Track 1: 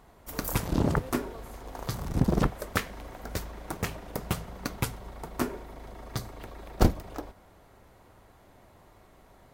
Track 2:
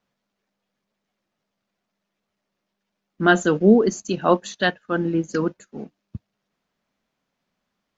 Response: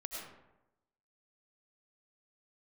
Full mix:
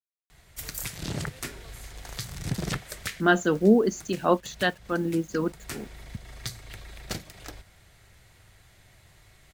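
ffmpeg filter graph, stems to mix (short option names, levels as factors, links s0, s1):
-filter_complex "[0:a]equalizer=f=125:t=o:w=1:g=5,equalizer=f=250:t=o:w=1:g=-11,equalizer=f=500:t=o:w=1:g=-6,equalizer=f=1000:t=o:w=1:g=-10,equalizer=f=2000:t=o:w=1:g=6,equalizer=f=4000:t=o:w=1:g=5,equalizer=f=8000:t=o:w=1:g=7,acrossover=split=150[s0][s1];[s0]acompressor=threshold=0.0126:ratio=6[s2];[s2][s1]amix=inputs=2:normalize=0,alimiter=limit=0.112:level=0:latency=1:release=265,adelay=300,volume=1.19[s3];[1:a]acrusher=bits=7:mix=0:aa=0.000001,volume=0.596,asplit=2[s4][s5];[s5]apad=whole_len=433632[s6];[s3][s6]sidechaincompress=threshold=0.0158:ratio=4:attack=23:release=274[s7];[s7][s4]amix=inputs=2:normalize=0"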